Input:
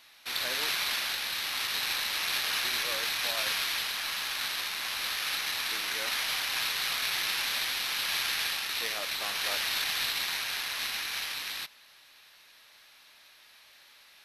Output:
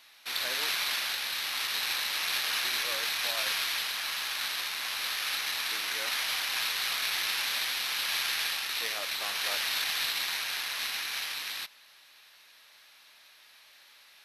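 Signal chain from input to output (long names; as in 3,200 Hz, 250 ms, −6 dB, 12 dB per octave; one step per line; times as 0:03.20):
low-shelf EQ 290 Hz −6.5 dB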